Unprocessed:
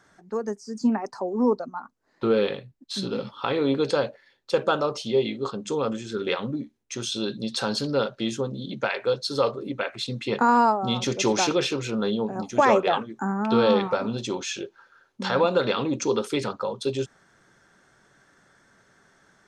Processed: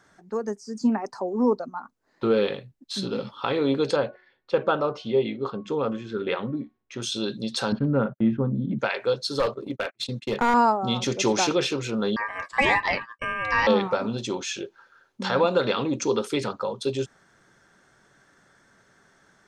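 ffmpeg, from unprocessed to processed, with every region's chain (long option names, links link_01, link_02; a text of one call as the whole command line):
ffmpeg -i in.wav -filter_complex "[0:a]asettb=1/sr,asplit=3[link_01][link_02][link_03];[link_01]atrim=end=3.964[link_04];[link_02]atrim=start=3.96:end=7.02,asetpts=PTS-STARTPTS,afade=type=in:duration=0.004:curve=qsin,afade=type=out:start_time=3.056:duration=0.004:curve=qsin,lowpass=2800,bandreject=frequency=366.8:width_type=h:width=4,bandreject=frequency=733.6:width_type=h:width=4,bandreject=frequency=1100.4:width_type=h:width=4,bandreject=frequency=1467.2:width_type=h:width=4,bandreject=frequency=1834:width_type=h:width=4,bandreject=frequency=2200.8:width_type=h:width=4[link_05];[link_03]atrim=start=7.016[link_06];[link_04][link_05]acrossfade=duration=0.004:curve1=hsin:curve2=qsin[link_07];[link_07][link_06]acrossfade=duration=0.004:curve1=qsin:curve2=hsin,asettb=1/sr,asplit=3[link_08][link_09][link_10];[link_08]atrim=end=7.724[link_11];[link_09]atrim=start=7.72:end=8.79,asetpts=PTS-STARTPTS,afade=type=in:duration=0.004:curve=qsin,afade=type=out:start_time=1.066:duration=0.004:curve=qsin,lowpass=frequency=1900:width=0.5412,lowpass=frequency=1900:width=1.3066,agate=range=-40dB:threshold=-41dB:ratio=16:release=100:detection=peak,lowshelf=frequency=300:width_type=q:width=1.5:gain=7[link_12];[link_10]atrim=start=8.786[link_13];[link_11][link_12]acrossfade=duration=0.004:curve1=hsin:curve2=qsin[link_14];[link_14][link_13]acrossfade=duration=0.004:curve1=qsin:curve2=hsin,asettb=1/sr,asplit=3[link_15][link_16][link_17];[link_15]atrim=end=9.394[link_18];[link_16]atrim=start=9.39:end=10.54,asetpts=PTS-STARTPTS,afade=type=in:duration=0.004:curve=qsin,afade=type=out:start_time=1.146:duration=0.004:curve=qsin,agate=range=-39dB:threshold=-35dB:ratio=16:release=100:detection=peak,aeval=exprs='clip(val(0),-1,0.0841)':channel_layout=same[link_19];[link_17]atrim=start=10.536[link_20];[link_18][link_19]acrossfade=duration=0.004:curve1=hsin:curve2=qsin[link_21];[link_21][link_20]acrossfade=duration=0.004:curve1=qsin:curve2=hsin,asettb=1/sr,asplit=3[link_22][link_23][link_24];[link_22]atrim=end=12.164[link_25];[link_23]atrim=start=12.16:end=13.67,asetpts=PTS-STARTPTS,afade=type=in:duration=0.004:curve=qsin,afade=type=out:start_time=1.506:duration=0.004:curve=qsin,agate=range=-33dB:threshold=-35dB:ratio=3:release=100:detection=peak,aeval=exprs='val(0)*sin(2*PI*1400*n/s)':channel_layout=same[link_26];[link_24]atrim=start=13.666[link_27];[link_25][link_26]acrossfade=duration=0.004:curve1=hsin:curve2=qsin[link_28];[link_28][link_27]acrossfade=duration=0.004:curve1=qsin:curve2=hsin" out.wav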